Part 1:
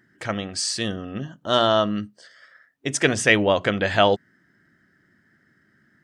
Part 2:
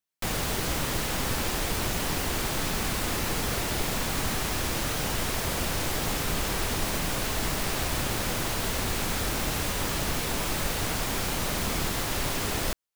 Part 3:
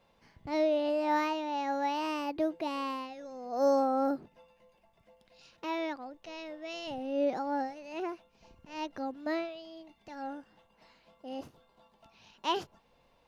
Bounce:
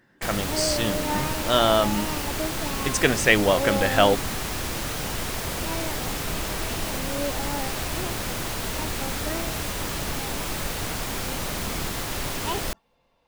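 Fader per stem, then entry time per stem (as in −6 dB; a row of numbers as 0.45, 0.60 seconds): −1.0, −0.5, −0.5 decibels; 0.00, 0.00, 0.00 seconds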